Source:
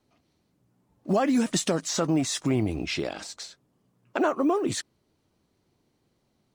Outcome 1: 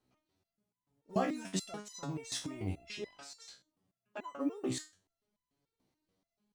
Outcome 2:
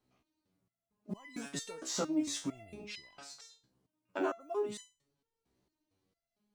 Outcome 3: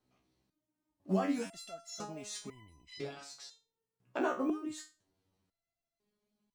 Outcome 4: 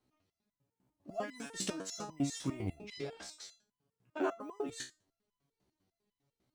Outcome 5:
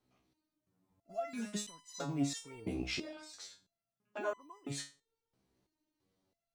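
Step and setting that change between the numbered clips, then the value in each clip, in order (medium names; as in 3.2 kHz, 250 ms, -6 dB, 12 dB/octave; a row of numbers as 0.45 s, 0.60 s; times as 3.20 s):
resonator arpeggio, rate: 6.9 Hz, 4.4 Hz, 2 Hz, 10 Hz, 3 Hz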